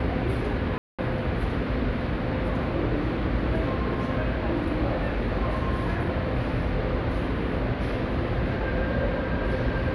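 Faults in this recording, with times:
0.78–0.99 gap 0.206 s

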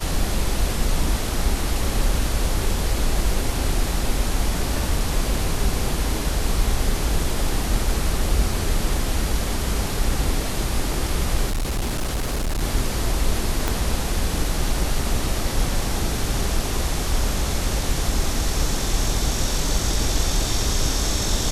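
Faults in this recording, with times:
11.48–12.63 clipped -20 dBFS
13.68 pop -6 dBFS

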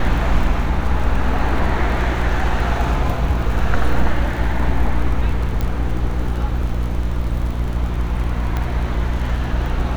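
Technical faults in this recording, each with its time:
crackle 38/s -26 dBFS
hum 60 Hz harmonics 6 -22 dBFS
5.61 pop -10 dBFS
8.57 pop -10 dBFS

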